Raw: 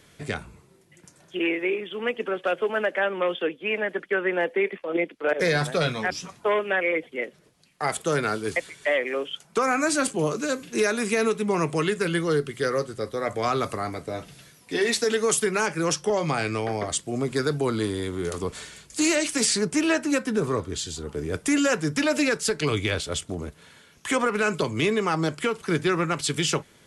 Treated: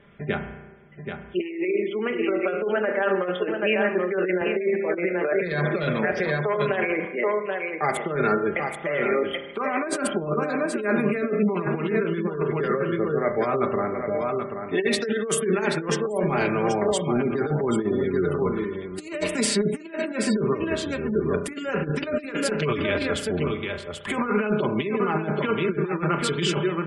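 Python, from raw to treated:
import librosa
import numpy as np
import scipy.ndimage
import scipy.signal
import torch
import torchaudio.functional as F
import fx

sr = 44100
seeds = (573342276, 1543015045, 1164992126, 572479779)

y = fx.wiener(x, sr, points=9)
y = scipy.signal.sosfilt(scipy.signal.butter(2, 11000.0, 'lowpass', fs=sr, output='sos'), y)
y = fx.peak_eq(y, sr, hz=6200.0, db=-8.5, octaves=0.86)
y = y + 10.0 ** (-7.0 / 20.0) * np.pad(y, (int(781 * sr / 1000.0), 0))[:len(y)]
y = fx.dynamic_eq(y, sr, hz=320.0, q=5.1, threshold_db=-40.0, ratio=4.0, max_db=5)
y = fx.rev_spring(y, sr, rt60_s=1.1, pass_ms=(33,), chirp_ms=75, drr_db=7.5)
y = fx.over_compress(y, sr, threshold_db=-24.0, ratio=-0.5)
y = y + 0.54 * np.pad(y, (int(5.0 * sr / 1000.0), 0))[:len(y)]
y = fx.spec_gate(y, sr, threshold_db=-30, keep='strong')
y = fx.band_squash(y, sr, depth_pct=70, at=(4.41, 7.05))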